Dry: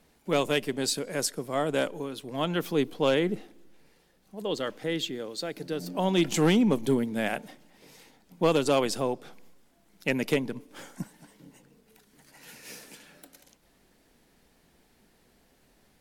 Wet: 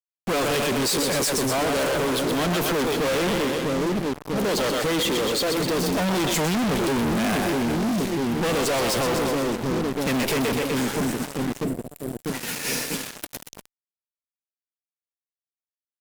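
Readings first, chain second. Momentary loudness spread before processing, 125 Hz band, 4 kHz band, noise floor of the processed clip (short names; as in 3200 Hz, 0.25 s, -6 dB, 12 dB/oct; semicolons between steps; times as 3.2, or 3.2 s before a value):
18 LU, +6.0 dB, +8.0 dB, under -85 dBFS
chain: split-band echo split 430 Hz, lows 0.646 s, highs 0.124 s, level -8.5 dB; fuzz box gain 51 dB, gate -48 dBFS; spectral gain 11.64–12.23, 750–7100 Hz -9 dB; gain -8.5 dB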